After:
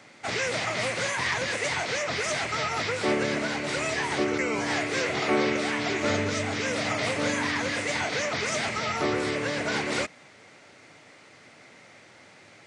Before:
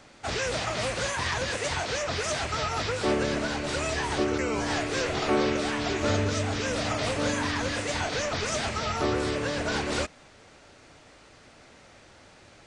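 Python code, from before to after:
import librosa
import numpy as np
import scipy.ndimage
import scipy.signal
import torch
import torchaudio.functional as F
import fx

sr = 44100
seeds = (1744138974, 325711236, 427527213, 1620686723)

y = scipy.signal.sosfilt(scipy.signal.butter(4, 110.0, 'highpass', fs=sr, output='sos'), x)
y = fx.peak_eq(y, sr, hz=2100.0, db=8.0, octaves=0.33)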